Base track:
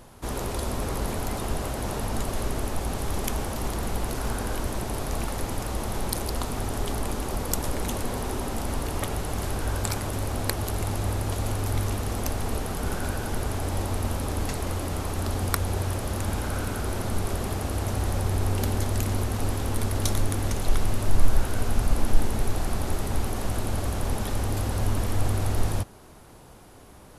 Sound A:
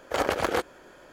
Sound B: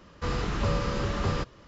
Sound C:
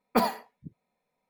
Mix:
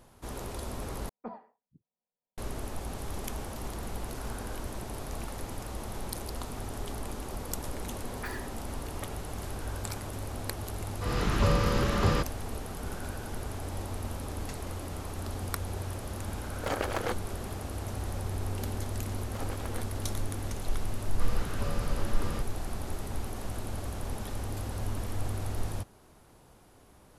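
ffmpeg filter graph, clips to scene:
-filter_complex "[3:a]asplit=2[s0][s1];[2:a]asplit=2[s2][s3];[1:a]asplit=2[s4][s5];[0:a]volume=0.376[s6];[s0]lowpass=1100[s7];[s1]highpass=f=1700:t=q:w=8.4[s8];[s2]dynaudnorm=f=220:g=3:m=4.47[s9];[s6]asplit=2[s10][s11];[s10]atrim=end=1.094[s12];[s7]atrim=end=1.29,asetpts=PTS-STARTPTS,volume=0.141[s13];[s11]atrim=start=2.376[s14];[s8]atrim=end=1.29,asetpts=PTS-STARTPTS,volume=0.158,afade=t=in:d=0.004:c=hsin,afade=t=out:st=1.286:d=0.004:c=hsin,adelay=8080[s15];[s9]atrim=end=1.67,asetpts=PTS-STARTPTS,volume=0.316,afade=t=in:d=0.004:c=hsin,afade=t=out:st=1.666:d=0.004:c=hsin,adelay=10790[s16];[s4]atrim=end=1.12,asetpts=PTS-STARTPTS,volume=0.473,afade=t=in:d=0.004:c=hsin,afade=t=out:st=1.116:d=0.004:c=hsin,adelay=728532S[s17];[s5]atrim=end=1.12,asetpts=PTS-STARTPTS,volume=0.133,afade=t=in:d=0.004:c=hsin,afade=t=out:st=1.116:d=0.004:c=hsin,adelay=19210[s18];[s3]atrim=end=1.67,asetpts=PTS-STARTPTS,volume=0.355,afade=t=in:d=0.004:c=hsin,afade=t=out:st=1.666:d=0.004:c=hsin,adelay=20980[s19];[s12][s13]acrossfade=d=0.004:c1=hsin:c2=hsin[s20];[s20][s14]acrossfade=d=0.004:c1=hsin:c2=hsin[s21];[s21][s15][s16][s17][s18][s19]amix=inputs=6:normalize=0"

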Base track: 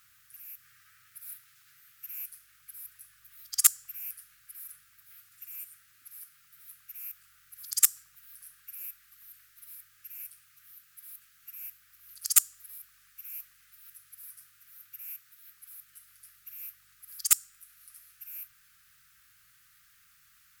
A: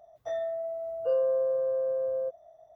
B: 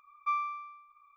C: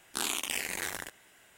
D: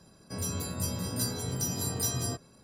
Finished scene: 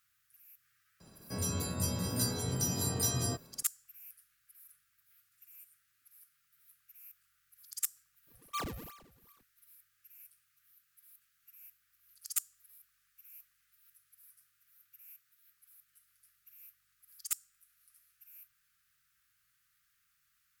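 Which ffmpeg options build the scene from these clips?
-filter_complex "[0:a]volume=0.224[s0];[2:a]acrusher=samples=40:mix=1:aa=0.000001:lfo=1:lforange=64:lforate=2.6[s1];[4:a]atrim=end=2.63,asetpts=PTS-STARTPTS,volume=0.891,afade=t=in:d=0.004:c=hsin,afade=t=out:st=2.626:d=0.004:c=hsin,adelay=1000[s2];[s1]atrim=end=1.16,asetpts=PTS-STARTPTS,volume=0.447,afade=t=in:d=0.004:c=hsin,afade=t=out:st=1.156:d=0.004:c=hsin,adelay=8270[s3];[s0][s2][s3]amix=inputs=3:normalize=0"

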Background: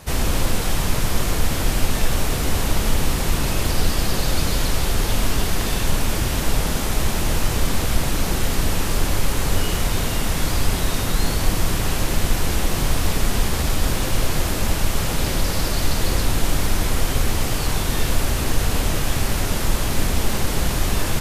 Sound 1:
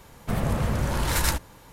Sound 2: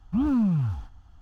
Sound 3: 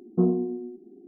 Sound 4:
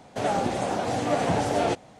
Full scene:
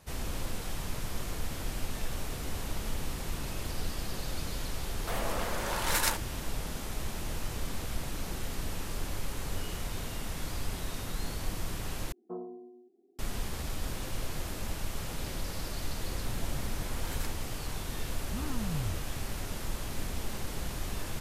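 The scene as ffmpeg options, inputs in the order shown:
-filter_complex "[1:a]asplit=2[s0][s1];[0:a]volume=0.168[s2];[s0]highpass=450[s3];[3:a]highpass=620[s4];[2:a]equalizer=f=280:w=0.92:g=-13[s5];[s2]asplit=2[s6][s7];[s6]atrim=end=12.124[s8];[s4]atrim=end=1.07,asetpts=PTS-STARTPTS,volume=0.473[s9];[s7]atrim=start=13.186[s10];[s3]atrim=end=1.72,asetpts=PTS-STARTPTS,volume=0.75,afade=t=in:d=0.004:c=hsin,afade=t=out:st=1.716:d=0.004:c=hsin,adelay=4790[s11];[s1]atrim=end=1.72,asetpts=PTS-STARTPTS,volume=0.126,afade=t=in:d=0.004:c=hsin,afade=t=out:st=1.716:d=0.004:c=hsin,adelay=15960[s12];[s5]atrim=end=1.21,asetpts=PTS-STARTPTS,volume=0.501,afade=t=in:d=0.004:c=hsin,afade=t=out:st=1.206:d=0.004:c=hsin,adelay=18190[s13];[s8][s9]acrossfade=d=0.004:c1=hsin:c2=hsin[s14];[s14][s10]acrossfade=d=0.004:c1=hsin:c2=hsin[s15];[s15][s11][s12][s13]amix=inputs=4:normalize=0"

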